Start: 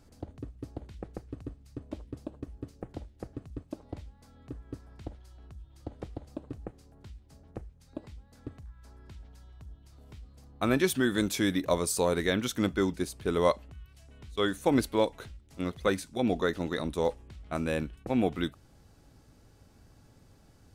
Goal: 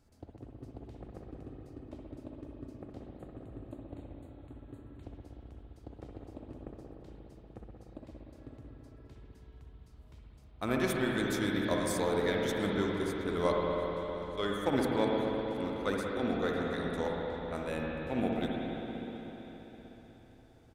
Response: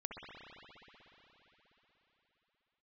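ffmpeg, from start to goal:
-filter_complex "[0:a]aeval=exprs='0.282*(cos(1*acos(clip(val(0)/0.282,-1,1)))-cos(1*PI/2))+0.0224*(cos(3*acos(clip(val(0)/0.282,-1,1)))-cos(3*PI/2))+0.00501*(cos(7*acos(clip(val(0)/0.282,-1,1)))-cos(7*PI/2))':channel_layout=same,asettb=1/sr,asplit=3[link_01][link_02][link_03];[link_01]atrim=end=3.124[link_04];[link_02]atrim=start=3.12:end=5.03,asetpts=PTS-STARTPTS,afade=type=in:duration=0.004:curve=qsin,afade=type=out:start_time=1.906:duration=0.004:curve=qsin,asuperstop=centerf=5400:order=8:qfactor=2.2[link_05];[link_03]atrim=start=5.026[link_06];[link_04][link_05]acrossfade=duration=0.004:curve1=hsin:curve2=qsin[link_07];[link_07][link_06]acrossfade=duration=0.004:curve1=qsin:curve2=hsin,aecho=1:1:722:0.075[link_08];[1:a]atrim=start_sample=2205[link_09];[link_08][link_09]afir=irnorm=-1:irlink=0"

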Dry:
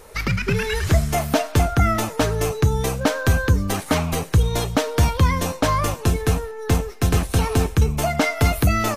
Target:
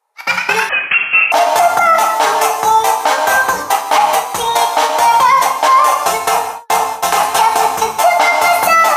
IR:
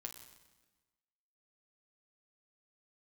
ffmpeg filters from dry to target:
-filter_complex "[0:a]agate=range=-40dB:threshold=-21dB:ratio=16:detection=peak,highpass=frequency=840:width_type=q:width=4.9[link_01];[1:a]atrim=start_sample=2205,afade=type=out:start_time=0.29:duration=0.01,atrim=end_sample=13230[link_02];[link_01][link_02]afir=irnorm=-1:irlink=0,asettb=1/sr,asplit=3[link_03][link_04][link_05];[link_03]atrim=end=0.694[link_06];[link_04]atrim=start=0.69:end=1.32,asetpts=PTS-STARTPTS,afade=type=in:duration=0.004:curve=qsin,afade=type=out:start_time=0.626:duration=0.004:curve=qsin,lowpass=frequency=2900:width_type=q:width=0.5098,lowpass=frequency=2900:width_type=q:width=0.6013,lowpass=frequency=2900:width_type=q:width=0.9,lowpass=frequency=2900:width_type=q:width=2.563,afreqshift=-3400[link_07];[link_05]atrim=start=1.316[link_08];[link_06][link_07]acrossfade=duration=0.004:curve1=hsin:curve2=qsin[link_09];[link_09][link_08]acrossfade=duration=0.004:curve1=qsin:curve2=hsin,alimiter=level_in=19dB:limit=-1dB:release=50:level=0:latency=1,volume=-1dB"

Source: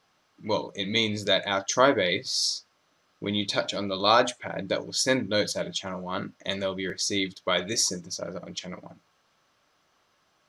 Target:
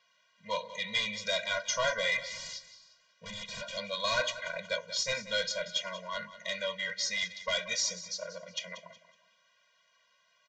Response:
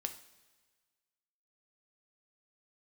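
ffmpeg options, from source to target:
-filter_complex "[0:a]highpass=frequency=1000:poles=1,equalizer=frequency=2300:width_type=o:width=1.6:gain=7,asoftclip=type=tanh:threshold=-21dB,asplit=2[link_01][link_02];[link_02]adelay=355.7,volume=-24dB,highshelf=frequency=4000:gain=-8[link_03];[link_01][link_03]amix=inputs=2:normalize=0,asettb=1/sr,asplit=3[link_04][link_05][link_06];[link_04]atrim=end=2.204[link_07];[link_05]atrim=start=2.2:end=3.77,asetpts=PTS-STARTPTS,afade=type=in:duration=0.004:curve=qsin,afade=type=out:start_time=1.566:duration=0.004:curve=qsin,aeval=exprs='0.0237*(abs(mod(val(0)/0.0237+3,4)-2)-1)':channel_layout=same[link_08];[link_06]atrim=start=3.766[link_09];[link_07][link_08]acrossfade=duration=0.004:curve1=hsin:curve2=qsin[link_10];[link_10][link_09]acrossfade=duration=0.004:curve1=qsin:curve2=hsin,asplit=2[link_11][link_12];[link_12]aecho=0:1:185|370|555:0.188|0.0622|0.0205[link_13];[link_11][link_13]amix=inputs=2:normalize=0,aresample=16000,aresample=44100,afftfilt=real='re*eq(mod(floor(b*sr/1024/230),2),0)':imag='im*eq(mod(floor(b*sr/1024/230),2),0)':win_size=1024:overlap=0.75"

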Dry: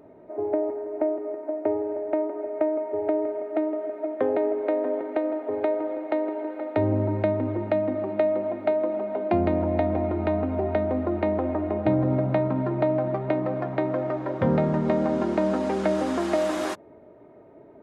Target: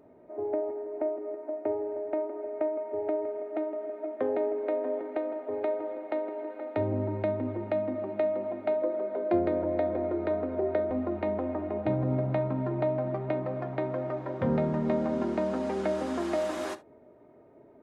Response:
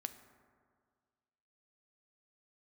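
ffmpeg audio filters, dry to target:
-filter_complex "[0:a]asettb=1/sr,asplit=3[link_01][link_02][link_03];[link_01]atrim=end=8.824[link_04];[link_02]atrim=start=8.82:end=10.91,asetpts=PTS-STARTPTS,afade=type=in:duration=0.004:curve=qsin,afade=type=out:start_time=2.086:duration=0.004:curve=qsin,highpass=100,equalizer=frequency=220:width_type=q:width=4:gain=-8,equalizer=frequency=360:width_type=q:width=4:gain=5,equalizer=frequency=520:width_type=q:width=4:gain=8,equalizer=frequency=810:width_type=q:width=4:gain=-5,equalizer=frequency=1600:width_type=q:width=4:gain=3,equalizer=frequency=2700:width_type=q:width=4:gain=-6,lowpass=frequency=6600:width=0.5412,lowpass=frequency=6600:width=1.3066[link_05];[link_03]atrim=start=10.906[link_06];[link_04][link_05]acrossfade=duration=0.004:curve1=hsin:curve2=qsin[link_07];[link_07][link_06]acrossfade=duration=0.004:curve1=qsin:curve2=hsin[link_08];[1:a]atrim=start_sample=2205,atrim=end_sample=3528[link_09];[link_08][link_09]afir=irnorm=-1:irlink=0,volume=-3dB"

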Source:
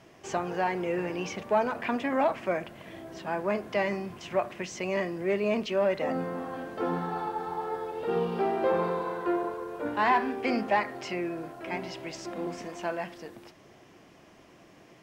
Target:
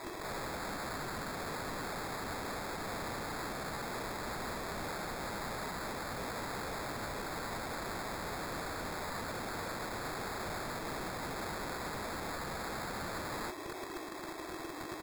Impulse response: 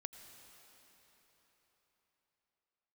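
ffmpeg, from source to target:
-af "firequalizer=gain_entry='entry(100,0);entry(170,-17);entry(320,14);entry(530,5);entry(980,15);entry(3400,-8)':delay=0.05:min_phase=1,acrusher=samples=15:mix=1:aa=0.000001,aeval=exprs='(mod(79.4*val(0)+1,2)-1)/79.4':channel_layout=same,volume=3dB"

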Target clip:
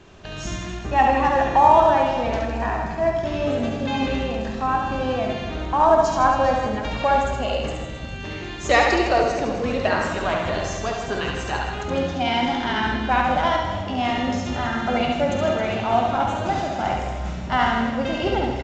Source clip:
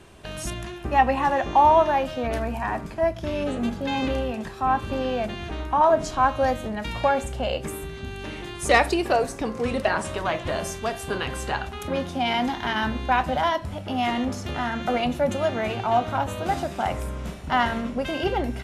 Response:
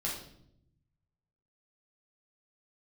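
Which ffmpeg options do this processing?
-filter_complex "[0:a]aecho=1:1:70|157.5|266.9|403.6|574.5:0.631|0.398|0.251|0.158|0.1,asplit=2[link_01][link_02];[1:a]atrim=start_sample=2205,adelay=48[link_03];[link_02][link_03]afir=irnorm=-1:irlink=0,volume=-10.5dB[link_04];[link_01][link_04]amix=inputs=2:normalize=0" -ar 16000 -c:a pcm_mulaw

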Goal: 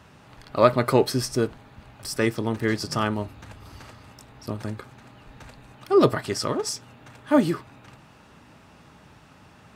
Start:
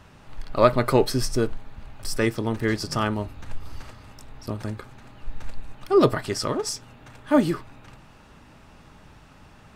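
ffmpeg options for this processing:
ffmpeg -i in.wav -af "highpass=82" out.wav

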